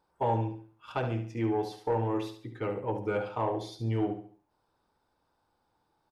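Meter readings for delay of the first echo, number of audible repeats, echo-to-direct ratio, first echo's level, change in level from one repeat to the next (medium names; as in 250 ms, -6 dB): 70 ms, 3, -8.5 dB, -9.0 dB, -9.0 dB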